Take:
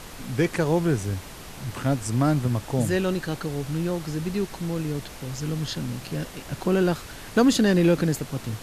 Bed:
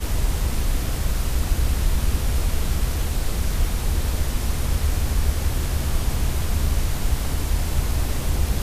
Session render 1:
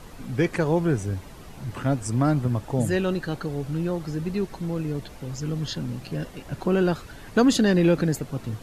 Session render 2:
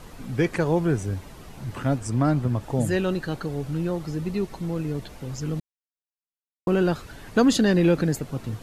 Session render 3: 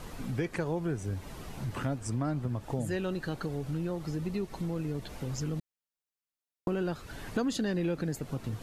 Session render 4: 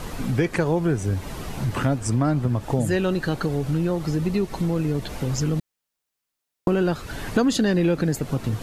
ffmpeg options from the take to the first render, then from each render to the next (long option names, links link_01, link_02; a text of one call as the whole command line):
ffmpeg -i in.wav -af "afftdn=noise_reduction=9:noise_floor=-41" out.wav
ffmpeg -i in.wav -filter_complex "[0:a]asettb=1/sr,asplit=3[link_01][link_02][link_03];[link_01]atrim=end=1.984[link_04];[link_02]atrim=start=1.98:end=2.61,asetpts=PTS-STARTPTS,afade=type=in:duration=0.004:curve=qsin,afade=type=out:start_time=0.626:duration=0.004:curve=qsin,highshelf=frequency=7200:gain=-5[link_05];[link_03]atrim=start=2.606[link_06];[link_04][link_05]acrossfade=duration=0.004:curve1=hsin:curve2=qsin[link_07];[link_07][link_06]acrossfade=duration=0.004:curve1=qsin:curve2=hsin,asettb=1/sr,asplit=3[link_08][link_09][link_10];[link_08]atrim=end=4.014[link_11];[link_09]atrim=start=4.01:end=4.65,asetpts=PTS-STARTPTS,afade=type=in:duration=0.004:curve=qsin,afade=type=out:start_time=0.636:duration=0.004:curve=qsin,bandreject=frequency=1600:width=12[link_12];[link_10]atrim=start=4.646[link_13];[link_11][link_12]acrossfade=duration=0.004:curve1=hsin:curve2=qsin[link_14];[link_14][link_13]acrossfade=duration=0.004:curve1=qsin:curve2=hsin,asplit=3[link_15][link_16][link_17];[link_15]atrim=end=5.6,asetpts=PTS-STARTPTS,afade=type=out:start_time=5.596:duration=0.004:curve=hsin[link_18];[link_16]atrim=start=5.6:end=6.67,asetpts=PTS-STARTPTS,volume=0[link_19];[link_17]atrim=start=6.67,asetpts=PTS-STARTPTS,afade=type=in:duration=0.004:curve=hsin[link_20];[link_18][link_19][link_20]concat=n=3:v=0:a=1" out.wav
ffmpeg -i in.wav -af "acompressor=threshold=-32dB:ratio=3" out.wav
ffmpeg -i in.wav -af "volume=10.5dB" out.wav